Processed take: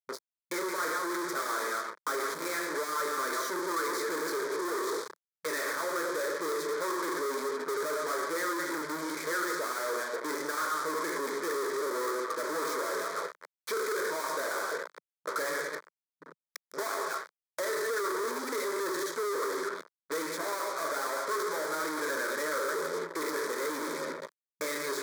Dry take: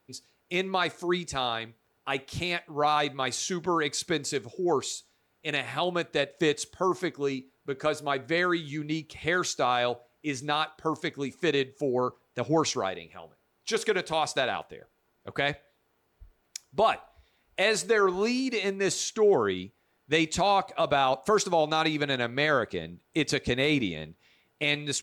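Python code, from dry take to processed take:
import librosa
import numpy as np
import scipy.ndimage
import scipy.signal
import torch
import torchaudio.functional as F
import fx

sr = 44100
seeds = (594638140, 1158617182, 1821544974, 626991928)

y = fx.reverse_delay(x, sr, ms=127, wet_db=-10.0)
y = scipy.signal.sosfilt(scipy.signal.butter(2, 1900.0, 'lowpass', fs=sr, output='sos'), y)
y = fx.rider(y, sr, range_db=10, speed_s=0.5)
y = fx.room_shoebox(y, sr, seeds[0], volume_m3=78.0, walls='mixed', distance_m=0.43)
y = fx.fuzz(y, sr, gain_db=44.0, gate_db=-46.0)
y = fx.peak_eq(y, sr, hz=280.0, db=-12.5, octaves=1.3)
y = 10.0 ** (-20.0 / 20.0) * np.tanh(y / 10.0 ** (-20.0 / 20.0))
y = fx.brickwall_highpass(y, sr, low_hz=170.0)
y = fx.fixed_phaser(y, sr, hz=750.0, stages=6)
y = fx.band_squash(y, sr, depth_pct=40)
y = F.gain(torch.from_numpy(y), -6.5).numpy()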